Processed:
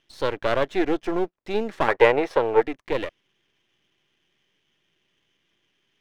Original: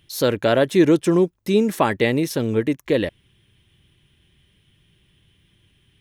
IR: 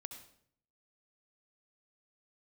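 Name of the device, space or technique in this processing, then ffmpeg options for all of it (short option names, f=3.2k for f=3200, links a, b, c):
crystal radio: -filter_complex "[0:a]highpass=360,lowpass=3k,aeval=exprs='if(lt(val(0),0),0.251*val(0),val(0))':c=same,asettb=1/sr,asplit=3[a][b][c];[a]atrim=end=1.884[d];[b]atrim=start=1.88:end=2.62,asetpts=PTS-STARTPTS,afade=t=in:d=0.004:c=qsin,afade=t=out:st=0.736:d=0.004:c=qsin,equalizer=f=250:t=o:w=1:g=-4,equalizer=f=500:t=o:w=1:g=11,equalizer=f=1k:t=o:w=1:g=10,equalizer=f=2k:t=o:w=1:g=4[e];[c]atrim=start=2.616[f];[d][e]acrossfade=d=0.004:c1=hsin:c2=qsin[g];[g][f]acrossfade=d=0.004:c1=qsin:c2=hsin,volume=-1dB"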